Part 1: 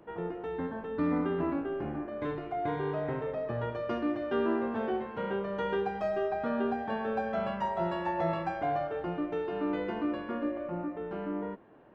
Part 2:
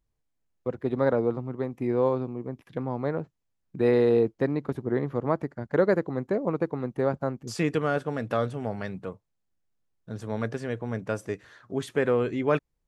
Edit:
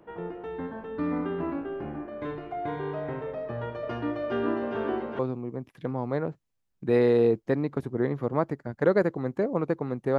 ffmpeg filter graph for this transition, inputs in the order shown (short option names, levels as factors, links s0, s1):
-filter_complex "[0:a]asettb=1/sr,asplit=3[s0][s1][s2];[s0]atrim=end=3.424[s3];[s1]atrim=start=3.42:end=5.19,asetpts=PTS-STARTPTS,afade=t=in:d=0.004:c=qsin,afade=t=out:st=1.766:d=0.004:c=qsin,aecho=1:1:407|814|1221|1628|2035|2442|2849:0.631|0.322|0.164|0.0837|0.0427|0.0218|0.0111,atrim=end_sample=78057[s4];[s2]atrim=start=5.186[s5];[s3][s4]acrossfade=d=0.004:c1=hsin:c2=qsin[s6];[s6][s5]acrossfade=d=0.004:c1=qsin:c2=hsin,apad=whole_dur=10.18,atrim=end=10.18,atrim=end=5.192[s7];[1:a]atrim=start=2.108:end=7.1[s8];[s7][s8]acrossfade=d=0.004:c1=hsin:c2=hsin"